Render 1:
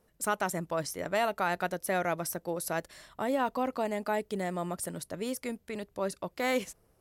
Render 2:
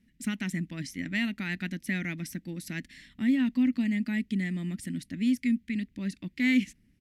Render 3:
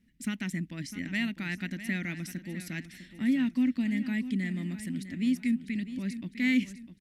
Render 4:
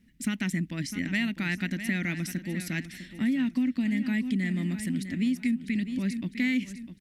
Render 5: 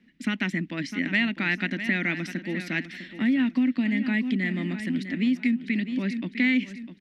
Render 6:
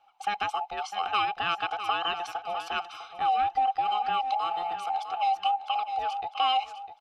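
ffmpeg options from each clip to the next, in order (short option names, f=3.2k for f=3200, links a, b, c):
-af "firequalizer=gain_entry='entry(150,0);entry(240,12);entry(430,-21);entry(660,-25);entry(1200,-22);entry(1900,4);entry(4500,-4);entry(9200,-11);entry(15000,-16)':delay=0.05:min_phase=1,volume=2.5dB"
-af "aecho=1:1:653|1306|1959|2612:0.237|0.0949|0.0379|0.0152,volume=-1.5dB"
-af "acompressor=threshold=-29dB:ratio=6,volume=5.5dB"
-filter_complex "[0:a]acrossover=split=210 4400:gain=0.112 1 0.0708[a][b][c];[a][b][c]amix=inputs=3:normalize=0,volume=6.5dB"
-af "afftfilt=real='real(if(between(b,1,1008),(2*floor((b-1)/48)+1)*48-b,b),0)':imag='imag(if(between(b,1,1008),(2*floor((b-1)/48)+1)*48-b,b),0)*if(between(b,1,1008),-1,1)':win_size=2048:overlap=0.75,volume=-2.5dB"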